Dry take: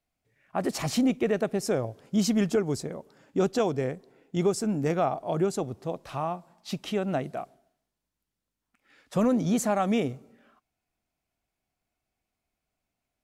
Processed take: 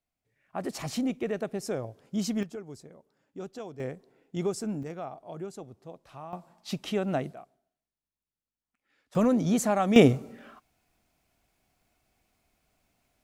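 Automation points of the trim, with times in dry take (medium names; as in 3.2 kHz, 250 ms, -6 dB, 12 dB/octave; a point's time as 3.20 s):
-5.5 dB
from 2.43 s -15 dB
from 3.80 s -5 dB
from 4.83 s -12.5 dB
from 6.33 s -0.5 dB
from 7.33 s -11.5 dB
from 9.15 s 0 dB
from 9.96 s +11 dB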